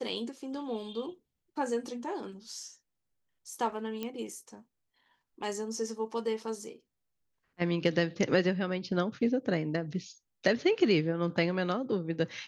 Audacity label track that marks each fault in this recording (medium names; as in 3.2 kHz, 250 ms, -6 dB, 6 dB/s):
4.030000	4.030000	pop -22 dBFS